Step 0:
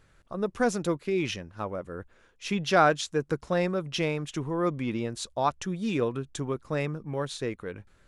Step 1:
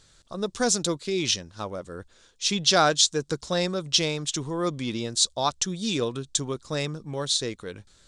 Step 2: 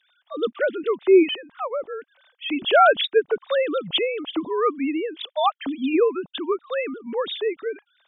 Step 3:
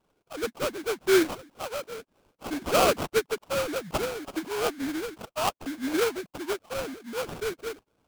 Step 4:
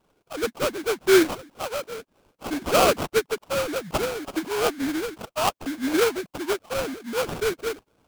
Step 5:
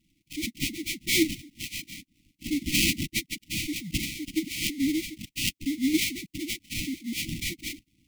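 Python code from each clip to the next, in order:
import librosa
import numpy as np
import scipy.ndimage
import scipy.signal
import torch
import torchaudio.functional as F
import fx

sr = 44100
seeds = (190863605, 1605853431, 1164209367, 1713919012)

y1 = fx.band_shelf(x, sr, hz=5500.0, db=15.5, octaves=1.7)
y2 = fx.sine_speech(y1, sr)
y2 = y2 * 10.0 ** (4.5 / 20.0)
y3 = fx.sample_hold(y2, sr, seeds[0], rate_hz=1900.0, jitter_pct=20)
y3 = y3 * 10.0 ** (-6.5 / 20.0)
y4 = fx.rider(y3, sr, range_db=4, speed_s=2.0)
y4 = y4 * 10.0 ** (2.5 / 20.0)
y5 = fx.brickwall_bandstop(y4, sr, low_hz=340.0, high_hz=1900.0)
y5 = y5 * 10.0 ** (1.5 / 20.0)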